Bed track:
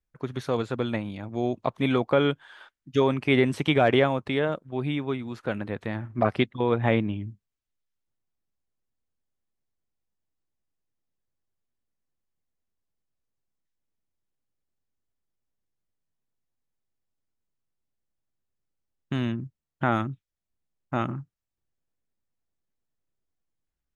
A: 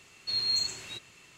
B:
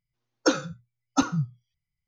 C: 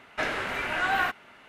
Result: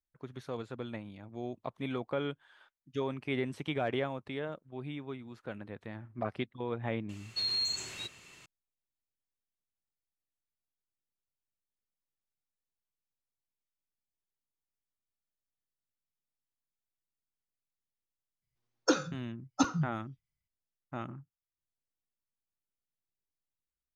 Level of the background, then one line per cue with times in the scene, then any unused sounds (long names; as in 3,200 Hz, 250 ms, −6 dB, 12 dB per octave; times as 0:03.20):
bed track −12.5 dB
0:07.09: mix in A + brickwall limiter −26 dBFS
0:18.42: mix in B −5 dB
not used: C